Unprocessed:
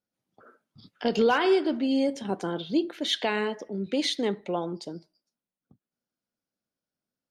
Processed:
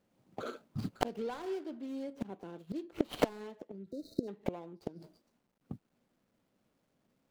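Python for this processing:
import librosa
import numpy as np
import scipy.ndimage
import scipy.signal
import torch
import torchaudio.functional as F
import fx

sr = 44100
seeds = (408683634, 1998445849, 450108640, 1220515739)

y = scipy.signal.medfilt(x, 25)
y = fx.gate_flip(y, sr, shuts_db=-29.0, range_db=-32)
y = fx.spec_repair(y, sr, seeds[0], start_s=3.9, length_s=0.36, low_hz=670.0, high_hz=3700.0, source='before')
y = y * 10.0 ** (16.5 / 20.0)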